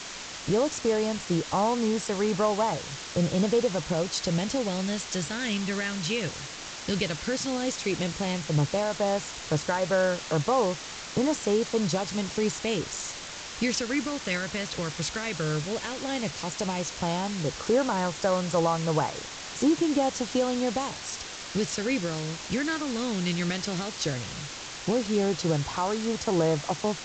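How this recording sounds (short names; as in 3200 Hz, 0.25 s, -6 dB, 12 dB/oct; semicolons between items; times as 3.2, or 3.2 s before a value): phasing stages 2, 0.12 Hz, lowest notch 780–2900 Hz; a quantiser's noise floor 6-bit, dither triangular; G.722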